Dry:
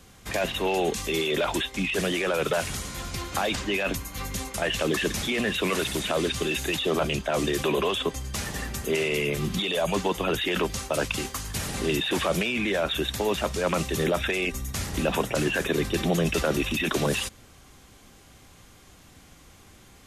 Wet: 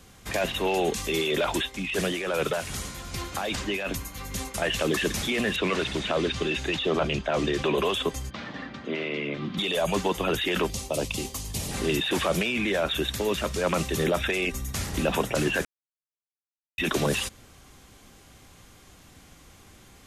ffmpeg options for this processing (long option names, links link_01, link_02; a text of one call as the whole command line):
ffmpeg -i in.wav -filter_complex "[0:a]asettb=1/sr,asplit=3[link_01][link_02][link_03];[link_01]atrim=end=1.624[link_04];[link_02]atrim=start=1.62:end=4.55,asetpts=PTS-STARTPTS,afade=type=in:duration=0.004:curve=qsin,afade=type=out:start_time=2.926:duration=0.004:curve=qsin,tremolo=f=2.5:d=0.41[link_05];[link_03]atrim=start=4.546[link_06];[link_04][link_05]acrossfade=duration=0.004:curve1=hsin:curve2=qsin[link_07];[link_07][link_06]acrossfade=duration=0.004:curve1=qsin:curve2=hsin,asettb=1/sr,asplit=3[link_08][link_09][link_10];[link_08]atrim=end=5.564[link_11];[link_09]atrim=start=5.56:end=7.78,asetpts=PTS-STARTPTS,afade=type=in:duration=0.004:curve=qsin,afade=type=out:start_time=2.216:duration=0.004:curve=qsin,lowpass=4800[link_12];[link_10]atrim=start=7.776[link_13];[link_11][link_12]acrossfade=duration=0.004:curve1=hsin:curve2=qsin[link_14];[link_14][link_13]acrossfade=duration=0.004:curve1=qsin:curve2=hsin,asplit=3[link_15][link_16][link_17];[link_15]afade=type=out:start_time=8.29:duration=0.02[link_18];[link_16]highpass=200,equalizer=frequency=280:width_type=q:width=4:gain=5,equalizer=frequency=410:width_type=q:width=4:gain=-9,equalizer=frequency=830:width_type=q:width=4:gain=-4,equalizer=frequency=1800:width_type=q:width=4:gain=-3,equalizer=frequency=2700:width_type=q:width=4:gain=-6,lowpass=frequency=3500:width=0.5412,lowpass=frequency=3500:width=1.3066,afade=type=in:start_time=8.29:duration=0.02,afade=type=out:start_time=9.57:duration=0.02[link_19];[link_17]afade=type=in:start_time=9.57:duration=0.02[link_20];[link_18][link_19][link_20]amix=inputs=3:normalize=0,asettb=1/sr,asplit=3[link_21][link_22][link_23];[link_21]atrim=end=10.704[link_24];[link_22]atrim=start=10.7:end=11.71,asetpts=PTS-STARTPTS,afade=type=in:duration=0.004:curve=qsin,afade=type=out:start_time=1.006:duration=0.004:curve=qsin,equalizer=frequency=1500:width_type=o:width=0.86:gain=-14.5[link_25];[link_23]atrim=start=11.706[link_26];[link_24][link_25]acrossfade=duration=0.004:curve1=hsin:curve2=qsin[link_27];[link_27][link_26]acrossfade=duration=0.004:curve1=qsin:curve2=hsin,asettb=1/sr,asplit=3[link_28][link_29][link_30];[link_28]atrim=end=13.144[link_31];[link_29]atrim=start=13.14:end=13.56,asetpts=PTS-STARTPTS,afade=type=in:duration=0.004:curve=qsin,afade=type=out:start_time=0.416:duration=0.004:curve=qsin,equalizer=frequency=780:width=3:gain=-7.5[link_32];[link_30]atrim=start=13.556[link_33];[link_31][link_32]acrossfade=duration=0.004:curve1=hsin:curve2=qsin[link_34];[link_34][link_33]acrossfade=duration=0.004:curve1=qsin:curve2=hsin,asplit=3[link_35][link_36][link_37];[link_35]atrim=end=15.65,asetpts=PTS-STARTPTS,afade=type=out:start_time=15.646:duration=0.004:curve=hsin[link_38];[link_36]atrim=start=15.65:end=16.78,asetpts=PTS-STARTPTS,volume=0[link_39];[link_37]atrim=start=16.78,asetpts=PTS-STARTPTS,afade=type=in:duration=0.004:curve=hsin[link_40];[link_38][link_39][link_40]concat=n=3:v=0:a=1" out.wav